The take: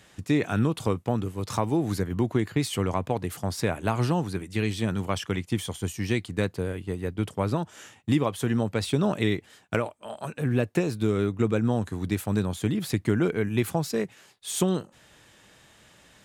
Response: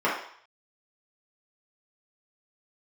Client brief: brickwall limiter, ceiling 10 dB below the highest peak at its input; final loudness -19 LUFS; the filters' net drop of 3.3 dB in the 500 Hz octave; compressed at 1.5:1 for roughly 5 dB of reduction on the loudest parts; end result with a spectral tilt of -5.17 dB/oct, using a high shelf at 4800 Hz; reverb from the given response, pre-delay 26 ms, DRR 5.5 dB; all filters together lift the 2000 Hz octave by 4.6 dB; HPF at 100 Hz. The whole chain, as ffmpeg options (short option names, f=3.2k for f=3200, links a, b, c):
-filter_complex "[0:a]highpass=100,equalizer=f=500:t=o:g=-4.5,equalizer=f=2k:t=o:g=7,highshelf=f=4.8k:g=-6.5,acompressor=threshold=-34dB:ratio=1.5,alimiter=limit=-22.5dB:level=0:latency=1,asplit=2[a][b];[1:a]atrim=start_sample=2205,adelay=26[c];[b][c]afir=irnorm=-1:irlink=0,volume=-21dB[d];[a][d]amix=inputs=2:normalize=0,volume=15dB"